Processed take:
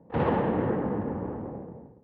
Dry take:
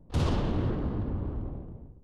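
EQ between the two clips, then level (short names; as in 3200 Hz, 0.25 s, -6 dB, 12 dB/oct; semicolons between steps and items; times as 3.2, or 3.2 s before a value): speaker cabinet 160–2400 Hz, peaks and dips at 200 Hz +4 dB, 490 Hz +9 dB, 850 Hz +9 dB, 1800 Hz +7 dB; +3.0 dB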